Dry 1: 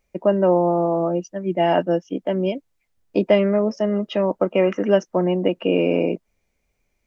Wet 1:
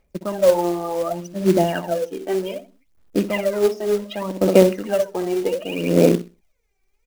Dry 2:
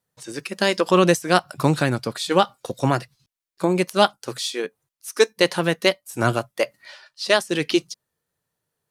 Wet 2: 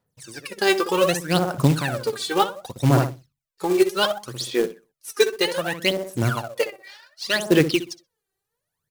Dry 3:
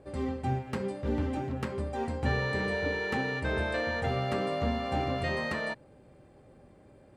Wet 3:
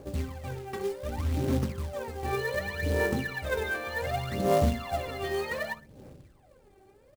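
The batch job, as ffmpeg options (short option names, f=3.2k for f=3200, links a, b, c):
-filter_complex "[0:a]asplit=2[a][b];[b]adelay=63,lowpass=f=1.4k:p=1,volume=-7dB,asplit=2[c][d];[d]adelay=63,lowpass=f=1.4k:p=1,volume=0.37,asplit=2[e][f];[f]adelay=63,lowpass=f=1.4k:p=1,volume=0.37,asplit=2[g][h];[h]adelay=63,lowpass=f=1.4k:p=1,volume=0.37[i];[a][c][e][g][i]amix=inputs=5:normalize=0,aphaser=in_gain=1:out_gain=1:delay=2.6:decay=0.8:speed=0.66:type=sinusoidal,acrusher=bits=4:mode=log:mix=0:aa=0.000001,volume=-6dB"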